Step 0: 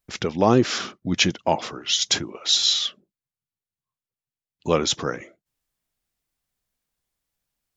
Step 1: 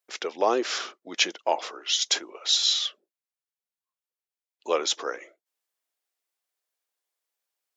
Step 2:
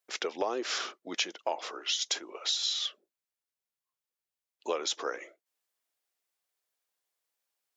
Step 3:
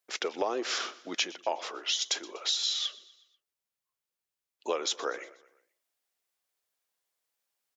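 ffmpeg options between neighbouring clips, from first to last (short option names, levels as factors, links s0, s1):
-af "highpass=f=390:w=0.5412,highpass=f=390:w=1.3066,volume=0.708"
-af "acompressor=threshold=0.0398:ratio=6"
-af "aecho=1:1:122|244|366|488:0.0944|0.0481|0.0246|0.0125,volume=1.12"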